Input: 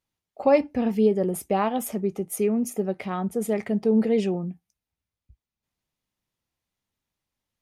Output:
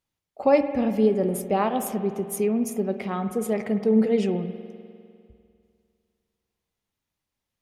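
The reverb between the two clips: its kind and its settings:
spring reverb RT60 2.3 s, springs 50 ms, chirp 65 ms, DRR 9 dB

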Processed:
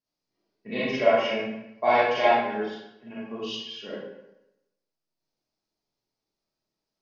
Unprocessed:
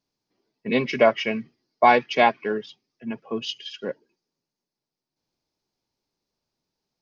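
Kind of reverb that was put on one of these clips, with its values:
comb and all-pass reverb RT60 0.89 s, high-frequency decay 0.8×, pre-delay 5 ms, DRR −9.5 dB
level −12.5 dB

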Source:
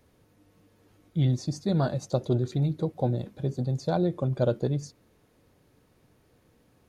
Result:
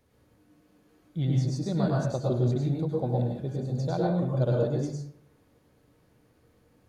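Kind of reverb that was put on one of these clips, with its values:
dense smooth reverb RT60 0.63 s, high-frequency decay 0.5×, pre-delay 90 ms, DRR −2.5 dB
level −5 dB

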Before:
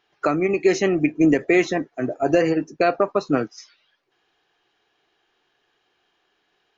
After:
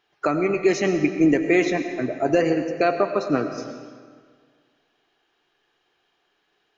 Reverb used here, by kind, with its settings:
comb and all-pass reverb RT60 1.8 s, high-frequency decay 0.85×, pre-delay 60 ms, DRR 7.5 dB
level −1.5 dB

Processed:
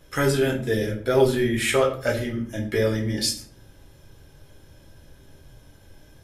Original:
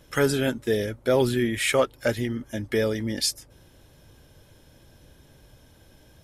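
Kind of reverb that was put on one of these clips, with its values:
rectangular room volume 49 cubic metres, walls mixed, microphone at 0.65 metres
level −2 dB

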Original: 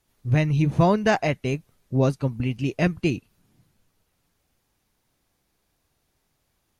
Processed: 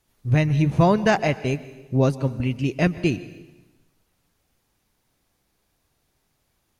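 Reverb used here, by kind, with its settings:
dense smooth reverb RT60 1.1 s, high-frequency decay 0.95×, pre-delay 110 ms, DRR 16 dB
level +1.5 dB

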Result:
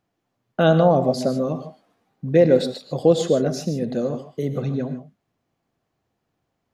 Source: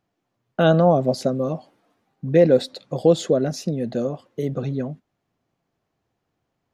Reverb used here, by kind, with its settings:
reverb whose tail is shaped and stops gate 170 ms rising, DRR 9 dB

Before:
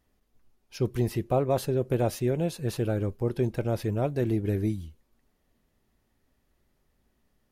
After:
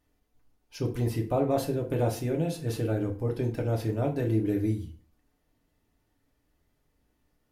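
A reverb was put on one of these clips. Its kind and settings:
feedback delay network reverb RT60 0.43 s, low-frequency decay 1.05×, high-frequency decay 0.75×, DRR 1 dB
level −3.5 dB

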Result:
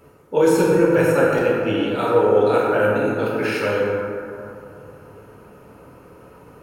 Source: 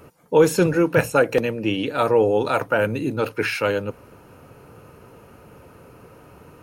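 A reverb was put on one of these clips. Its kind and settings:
dense smooth reverb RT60 2.7 s, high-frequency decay 0.35×, DRR −6 dB
level −6 dB

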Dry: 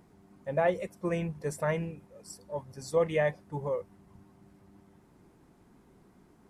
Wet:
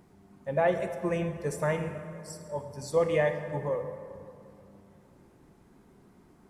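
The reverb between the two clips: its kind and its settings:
dense smooth reverb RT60 2.4 s, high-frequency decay 0.55×, DRR 6.5 dB
level +1 dB

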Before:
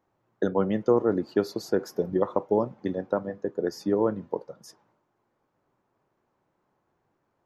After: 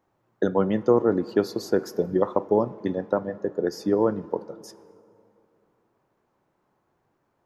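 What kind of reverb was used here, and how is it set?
dense smooth reverb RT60 2.9 s, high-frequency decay 0.45×, DRR 18.5 dB
level +2.5 dB

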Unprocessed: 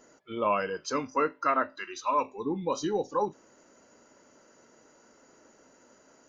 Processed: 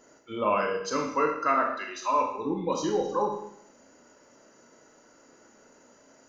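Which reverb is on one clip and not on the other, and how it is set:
four-comb reverb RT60 0.69 s, combs from 26 ms, DRR 2 dB

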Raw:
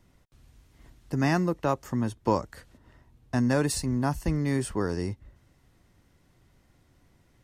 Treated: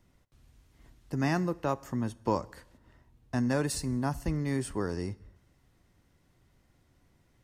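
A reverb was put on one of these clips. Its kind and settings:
dense smooth reverb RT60 0.78 s, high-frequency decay 0.9×, DRR 18.5 dB
level −4 dB

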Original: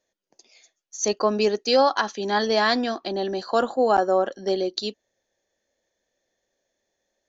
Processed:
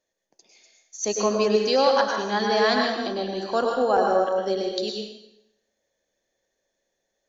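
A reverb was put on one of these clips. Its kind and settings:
dense smooth reverb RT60 0.83 s, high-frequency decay 0.9×, pre-delay 90 ms, DRR 0.5 dB
level −3 dB

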